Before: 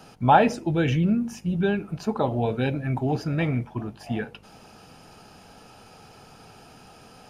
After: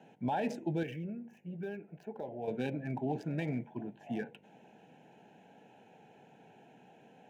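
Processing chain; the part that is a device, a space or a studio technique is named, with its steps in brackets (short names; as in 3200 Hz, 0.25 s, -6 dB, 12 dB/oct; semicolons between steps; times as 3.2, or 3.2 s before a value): Wiener smoothing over 9 samples; PA system with an anti-feedback notch (HPF 150 Hz 24 dB/oct; Butterworth band-stop 1200 Hz, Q 2.1; limiter -17.5 dBFS, peak gain reduction 11.5 dB); 0.83–2.48 ten-band EQ 125 Hz -7 dB, 250 Hz -10 dB, 1000 Hz -8 dB, 4000 Hz -11 dB, 8000 Hz -11 dB; gain -7.5 dB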